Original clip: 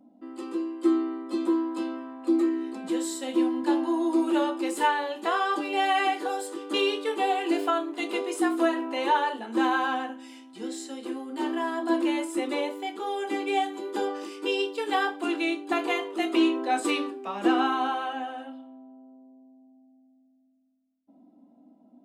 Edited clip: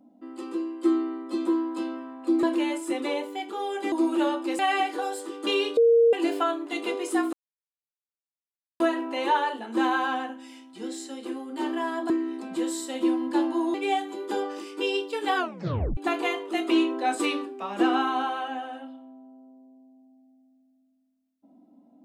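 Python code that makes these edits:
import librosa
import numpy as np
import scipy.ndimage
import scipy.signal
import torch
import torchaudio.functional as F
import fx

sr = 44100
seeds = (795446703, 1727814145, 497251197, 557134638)

y = fx.edit(x, sr, fx.swap(start_s=2.43, length_s=1.64, other_s=11.9, other_length_s=1.49),
    fx.cut(start_s=4.74, length_s=1.12),
    fx.bleep(start_s=7.04, length_s=0.36, hz=464.0, db=-14.5),
    fx.insert_silence(at_s=8.6, length_s=1.47),
    fx.tape_stop(start_s=15.0, length_s=0.62), tone=tone)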